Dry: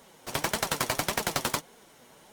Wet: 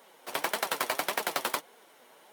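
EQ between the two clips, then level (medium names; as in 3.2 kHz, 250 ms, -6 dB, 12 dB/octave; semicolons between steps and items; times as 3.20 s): high-pass 390 Hz 12 dB/octave; peaking EQ 6.6 kHz -7 dB 1.1 oct; 0.0 dB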